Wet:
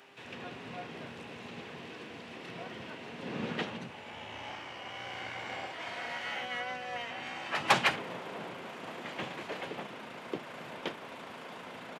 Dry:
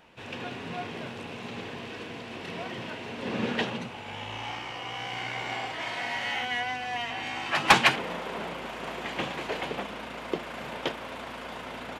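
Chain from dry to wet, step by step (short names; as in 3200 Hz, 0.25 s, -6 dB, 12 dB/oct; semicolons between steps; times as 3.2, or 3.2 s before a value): buzz 400 Hz, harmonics 6, -60 dBFS -7 dB/oct; HPF 120 Hz 24 dB/oct; harmoniser -7 st -10 dB, -5 st -8 dB; mismatched tape noise reduction encoder only; gain -7.5 dB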